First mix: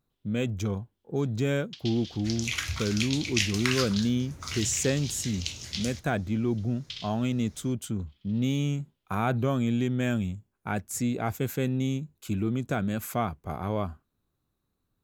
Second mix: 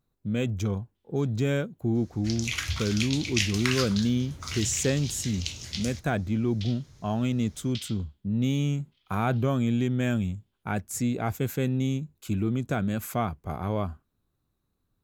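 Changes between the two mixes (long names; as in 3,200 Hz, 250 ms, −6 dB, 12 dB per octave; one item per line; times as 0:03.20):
first sound: entry +0.85 s
master: add low-shelf EQ 140 Hz +3.5 dB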